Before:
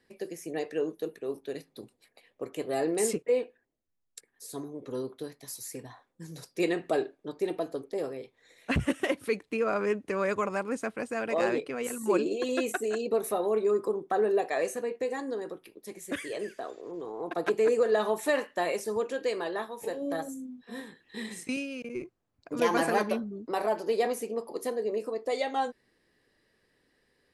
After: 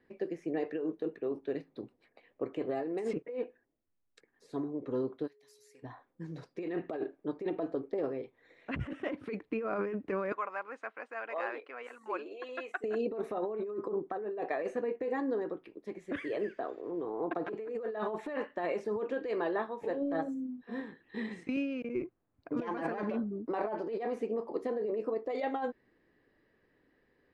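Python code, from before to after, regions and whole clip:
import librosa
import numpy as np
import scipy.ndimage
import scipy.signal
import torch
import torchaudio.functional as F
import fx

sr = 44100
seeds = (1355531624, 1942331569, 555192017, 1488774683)

y = fx.pre_emphasis(x, sr, coefficient=0.97, at=(5.26, 5.82), fade=0.02)
y = fx.dmg_tone(y, sr, hz=420.0, level_db=-64.0, at=(5.26, 5.82), fade=0.02)
y = fx.chain(y, sr, fx.highpass(hz=1000.0, slope=12),
    fx.high_shelf(hz=2400.0, db=-7.5), at=(10.32, 12.84))
y = scipy.signal.sosfilt(scipy.signal.butter(2, 2100.0, 'lowpass', fs=sr, output='sos'), y)
y = fx.peak_eq(y, sr, hz=300.0, db=4.0, octaves=0.47)
y = fx.over_compress(y, sr, threshold_db=-31.0, ratio=-1.0)
y = y * librosa.db_to_amplitude(-2.5)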